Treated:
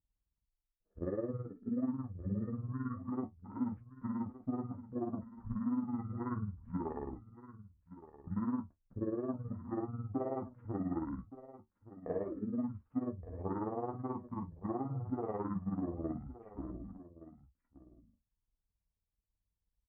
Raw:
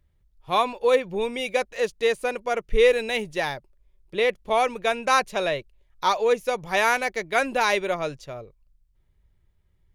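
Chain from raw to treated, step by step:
high-pass filter 60 Hz
noise gate −45 dBFS, range −10 dB
Bessel low-pass filter 1,700 Hz, order 6
parametric band 180 Hz +7 dB 2.3 octaves
brickwall limiter −15 dBFS, peak gain reduction 8 dB
downward compressor 2 to 1, threshold −26 dBFS, peak gain reduction 4.5 dB
amplitude modulation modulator 37 Hz, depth 70%
notch comb filter 150 Hz
single-tap delay 585 ms −15.5 dB
wrong playback speed 15 ips tape played at 7.5 ips
level −5.5 dB

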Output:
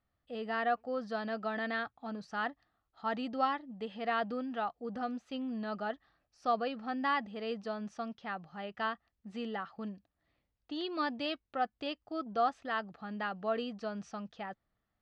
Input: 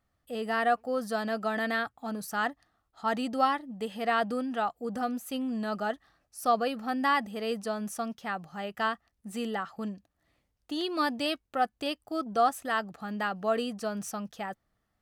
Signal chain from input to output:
low-pass filter 4,700 Hz 24 dB per octave
level −5.5 dB

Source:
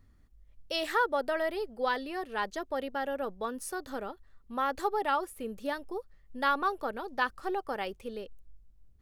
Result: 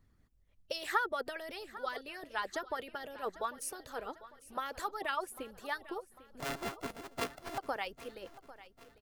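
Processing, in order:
0:06.40–0:07.58: samples sorted by size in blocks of 64 samples
harmonic and percussive parts rebalanced harmonic −16 dB
repeating echo 798 ms, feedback 49%, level −17 dB
level +1 dB

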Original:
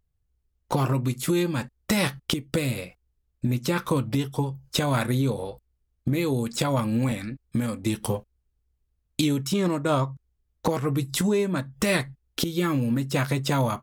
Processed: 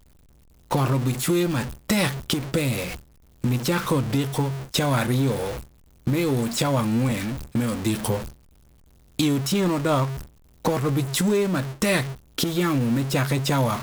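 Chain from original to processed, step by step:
converter with a step at zero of −27 dBFS
noise gate with hold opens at −25 dBFS

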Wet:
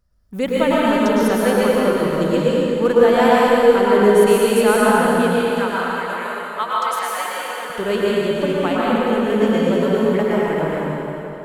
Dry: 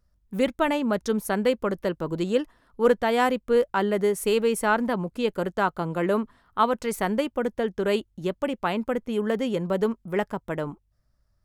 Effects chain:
0:05.27–0:07.70: high-pass filter 1,100 Hz 12 dB per octave
dense smooth reverb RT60 3.3 s, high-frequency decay 0.85×, pre-delay 95 ms, DRR −7 dB
level +1 dB

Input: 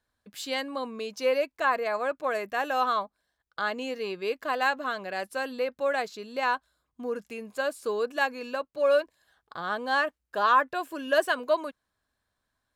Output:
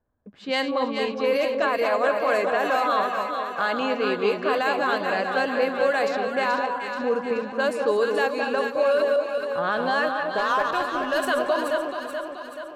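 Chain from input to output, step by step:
feedback delay that plays each chunk backwards 119 ms, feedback 40%, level −11 dB
low-pass that shuts in the quiet parts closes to 750 Hz, open at −23.5 dBFS
brickwall limiter −22 dBFS, peak gain reduction 11.5 dB
0:10.38–0:11.27: power curve on the samples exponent 1.4
delay that swaps between a low-pass and a high-pass 215 ms, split 1,000 Hz, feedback 74%, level −3 dB
level +7 dB

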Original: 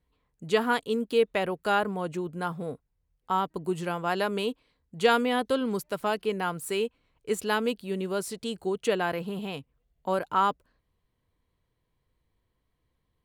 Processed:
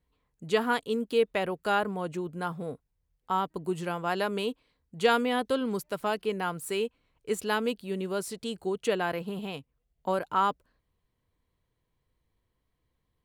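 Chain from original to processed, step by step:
0:09.10–0:10.12: transient designer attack +2 dB, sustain −3 dB
level −1.5 dB

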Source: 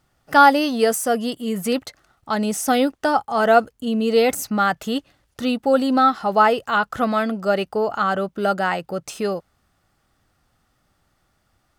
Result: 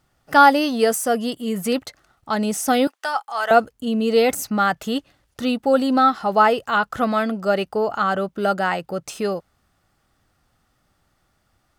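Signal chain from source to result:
0:02.87–0:03.51: high-pass filter 1,000 Hz 12 dB per octave

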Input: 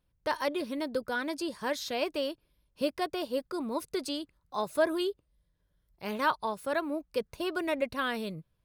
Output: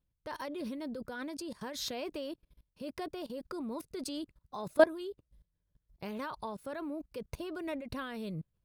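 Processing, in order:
low-shelf EQ 380 Hz +7.5 dB
output level in coarse steps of 21 dB
amplitude modulation by smooth noise, depth 60%
level +6.5 dB

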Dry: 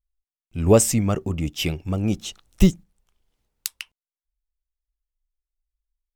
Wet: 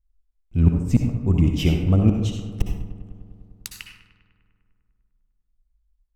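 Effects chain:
spectral tilt −2.5 dB per octave
gate with flip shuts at −6 dBFS, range −33 dB
feedback echo with a low-pass in the loop 100 ms, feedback 79%, low-pass 3,200 Hz, level −13.5 dB
on a send at −3.5 dB: convolution reverb RT60 0.60 s, pre-delay 53 ms

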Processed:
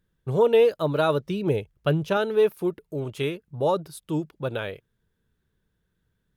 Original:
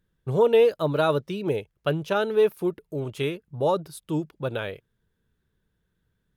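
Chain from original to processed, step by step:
0:01.23–0:02.17: low-shelf EQ 170 Hz +9 dB

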